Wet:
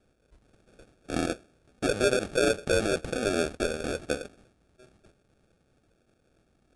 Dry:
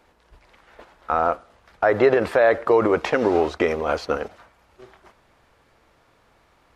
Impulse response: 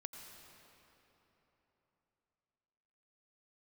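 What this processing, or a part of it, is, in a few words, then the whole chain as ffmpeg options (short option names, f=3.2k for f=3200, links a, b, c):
crushed at another speed: -af "asetrate=88200,aresample=44100,acrusher=samples=22:mix=1:aa=0.000001,asetrate=22050,aresample=44100,volume=-8dB"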